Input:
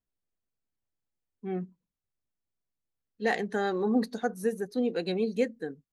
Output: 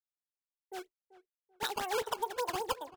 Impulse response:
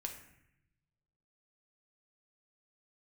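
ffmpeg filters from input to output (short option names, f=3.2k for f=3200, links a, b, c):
-filter_complex "[0:a]afftfilt=real='re*pow(10,9/40*sin(2*PI*(1.8*log(max(b,1)*sr/1024/100)/log(2)-(0.42)*(pts-256)/sr)))':imag='im*pow(10,9/40*sin(2*PI*(1.8*log(max(b,1)*sr/1024/100)/log(2)-(0.42)*(pts-256)/sr)))':win_size=1024:overlap=0.75,bandreject=f=2.3k:w=7.4,agate=range=-33dB:threshold=-50dB:ratio=3:detection=peak,acrossover=split=6700[a][b];[b]acompressor=threshold=-60dB:ratio=4:attack=1:release=60[c];[a][c]amix=inputs=2:normalize=0,acrusher=samples=27:mix=1:aa=0.000001:lfo=1:lforange=43.2:lforate=2.6,asplit=2[d][e];[e]adelay=772,lowpass=f=840:p=1,volume=-17dB,asplit=2[f][g];[g]adelay=772,lowpass=f=840:p=1,volume=0.35,asplit=2[h][i];[i]adelay=772,lowpass=f=840:p=1,volume=0.35[j];[d][f][h][j]amix=inputs=4:normalize=0,asetrate=88200,aresample=44100,volume=-7dB"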